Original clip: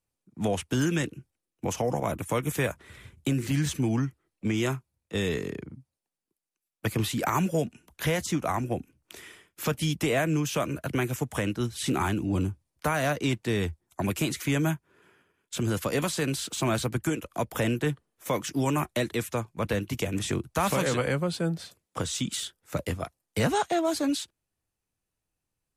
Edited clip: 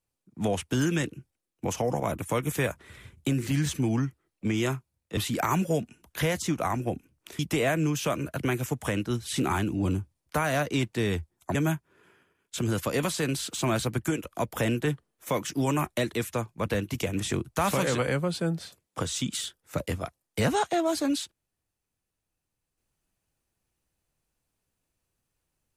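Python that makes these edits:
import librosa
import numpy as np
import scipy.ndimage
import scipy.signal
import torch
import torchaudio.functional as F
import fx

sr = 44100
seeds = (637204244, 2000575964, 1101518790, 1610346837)

y = fx.edit(x, sr, fx.cut(start_s=5.17, length_s=1.84),
    fx.cut(start_s=9.23, length_s=0.66),
    fx.cut(start_s=14.05, length_s=0.49), tone=tone)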